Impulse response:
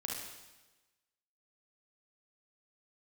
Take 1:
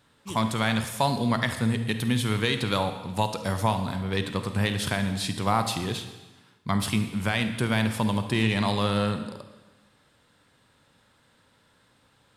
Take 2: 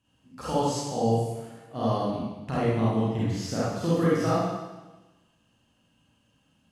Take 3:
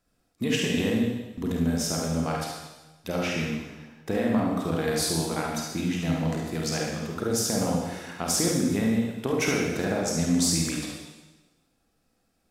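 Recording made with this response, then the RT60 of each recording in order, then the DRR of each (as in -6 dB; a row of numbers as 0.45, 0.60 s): 3; 1.2, 1.2, 1.2 s; 7.5, -9.0, -2.0 dB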